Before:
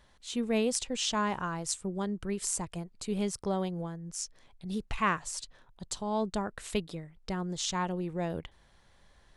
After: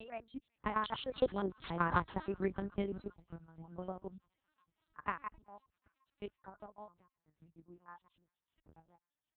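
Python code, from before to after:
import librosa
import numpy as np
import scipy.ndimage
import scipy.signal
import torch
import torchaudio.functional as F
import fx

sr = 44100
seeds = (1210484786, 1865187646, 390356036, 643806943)

p1 = fx.block_reorder(x, sr, ms=97.0, group=7)
p2 = fx.doppler_pass(p1, sr, speed_mps=10, closest_m=3.7, pass_at_s=1.91)
p3 = p2 + fx.echo_wet_highpass(p2, sr, ms=378, feedback_pct=73, hz=1900.0, wet_db=-14.0, dry=0)
p4 = fx.cheby_harmonics(p3, sr, harmonics=(2, 7), levels_db=(-22, -31), full_scale_db=-28.5)
p5 = fx.low_shelf(p4, sr, hz=65.0, db=3.5)
p6 = fx.transient(p5, sr, attack_db=11, sustain_db=-1)
p7 = fx.noise_reduce_blind(p6, sr, reduce_db=15)
p8 = 10.0 ** (-32.5 / 20.0) * np.tanh(p7 / 10.0 ** (-32.5 / 20.0))
p9 = p7 + F.gain(torch.from_numpy(p8), -8.5).numpy()
p10 = scipy.signal.sosfilt(scipy.signal.butter(2, 2800.0, 'lowpass', fs=sr, output='sos'), p9)
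p11 = fx.lpc_vocoder(p10, sr, seeds[0], excitation='pitch_kept', order=8)
p12 = scipy.signal.sosfilt(scipy.signal.butter(2, 42.0, 'highpass', fs=sr, output='sos'), p11)
y = F.gain(torch.from_numpy(p12), 1.0).numpy()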